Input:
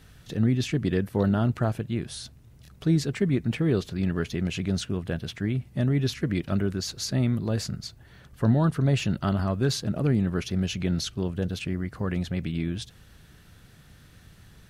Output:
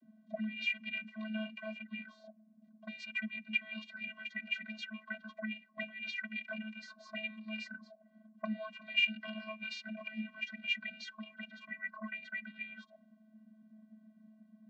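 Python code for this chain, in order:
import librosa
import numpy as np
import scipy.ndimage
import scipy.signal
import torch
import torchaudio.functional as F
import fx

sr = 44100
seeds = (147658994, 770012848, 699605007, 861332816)

y = fx.auto_wah(x, sr, base_hz=320.0, top_hz=2600.0, q=13.0, full_db=-23.5, direction='up')
y = fx.vocoder(y, sr, bands=32, carrier='square', carrier_hz=217.0)
y = y * librosa.db_to_amplitude(12.5)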